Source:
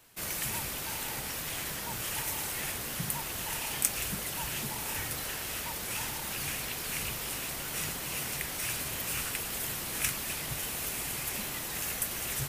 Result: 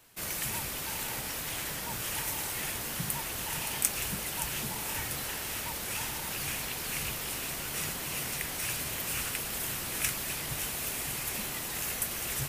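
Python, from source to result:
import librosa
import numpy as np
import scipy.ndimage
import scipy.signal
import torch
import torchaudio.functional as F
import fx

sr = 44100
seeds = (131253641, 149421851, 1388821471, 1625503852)

y = x + 10.0 ** (-10.0 / 20.0) * np.pad(x, (int(571 * sr / 1000.0), 0))[:len(x)]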